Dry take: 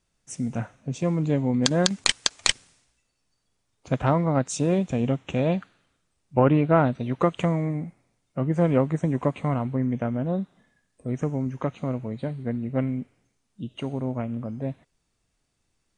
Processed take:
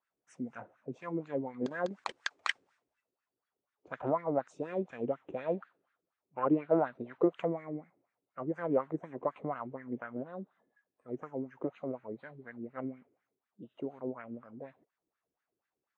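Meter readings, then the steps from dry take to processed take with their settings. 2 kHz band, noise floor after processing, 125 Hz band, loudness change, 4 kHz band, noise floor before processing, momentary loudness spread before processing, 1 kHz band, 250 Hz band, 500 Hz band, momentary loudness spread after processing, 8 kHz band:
-8.0 dB, under -85 dBFS, -21.5 dB, -11.0 dB, under -15 dB, -75 dBFS, 13 LU, -8.5 dB, -11.5 dB, -8.0 dB, 16 LU, under -25 dB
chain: wah 4.1 Hz 340–1700 Hz, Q 3.6

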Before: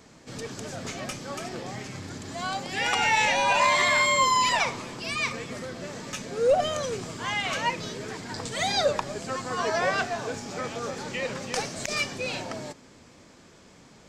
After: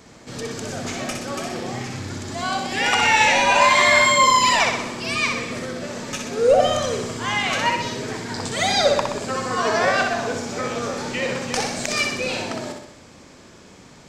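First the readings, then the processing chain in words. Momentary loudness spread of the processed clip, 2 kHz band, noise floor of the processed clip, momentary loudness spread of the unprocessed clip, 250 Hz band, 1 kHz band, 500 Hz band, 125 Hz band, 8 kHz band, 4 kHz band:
15 LU, +6.5 dB, -46 dBFS, 16 LU, +8.0 dB, +6.5 dB, +6.5 dB, +6.0 dB, +6.5 dB, +6.5 dB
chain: flutter echo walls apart 10.7 m, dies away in 0.75 s; gain +5 dB

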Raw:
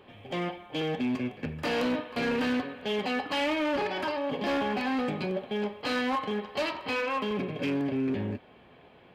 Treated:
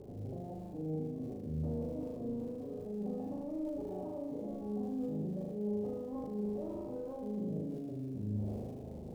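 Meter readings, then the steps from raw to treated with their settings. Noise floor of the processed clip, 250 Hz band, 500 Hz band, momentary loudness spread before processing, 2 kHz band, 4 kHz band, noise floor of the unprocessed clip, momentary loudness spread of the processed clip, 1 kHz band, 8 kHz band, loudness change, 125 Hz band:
-45 dBFS, -7.0 dB, -9.0 dB, 6 LU, under -35 dB, under -30 dB, -55 dBFS, 5 LU, -20.0 dB, under -15 dB, -9.5 dB, -1.0 dB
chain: inverse Chebyshev low-pass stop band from 3600 Hz, stop band 80 dB; low shelf 190 Hz +10 dB; limiter -31 dBFS, peak gain reduction 12 dB; reverse; compressor 4:1, threshold -50 dBFS, peak gain reduction 13.5 dB; reverse; crackle 160/s -62 dBFS; on a send: flutter echo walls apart 6.6 m, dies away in 1.1 s; on the sum: sustainer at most 28 dB/s; gain +5 dB

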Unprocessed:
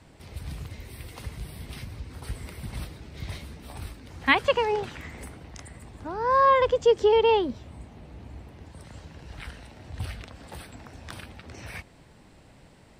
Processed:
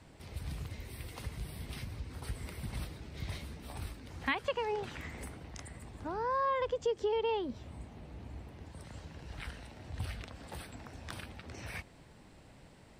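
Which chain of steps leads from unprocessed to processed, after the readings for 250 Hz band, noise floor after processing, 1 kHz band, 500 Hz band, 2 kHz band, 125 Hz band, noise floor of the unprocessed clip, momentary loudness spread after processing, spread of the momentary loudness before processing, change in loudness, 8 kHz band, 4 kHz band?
-7.5 dB, -57 dBFS, -11.5 dB, -11.5 dB, -11.0 dB, -4.5 dB, -54 dBFS, 17 LU, 23 LU, -15.0 dB, n/a, -10.5 dB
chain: compressor 2.5:1, threshold -30 dBFS, peak gain reduction 10.5 dB; gain -3.5 dB

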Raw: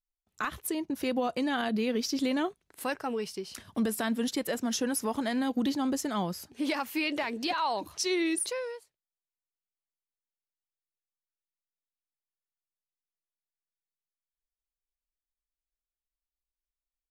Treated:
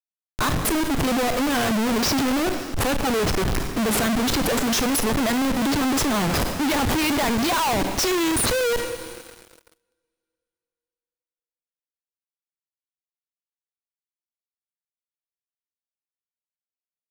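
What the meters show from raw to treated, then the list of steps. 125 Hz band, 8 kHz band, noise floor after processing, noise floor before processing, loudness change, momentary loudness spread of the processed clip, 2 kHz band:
+17.5 dB, +11.0 dB, under -85 dBFS, under -85 dBFS, +9.5 dB, 5 LU, +10.0 dB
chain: Schmitt trigger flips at -38 dBFS; two-slope reverb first 0.56 s, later 3.2 s, from -18 dB, DRR 7.5 dB; sample leveller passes 5; gain +5 dB

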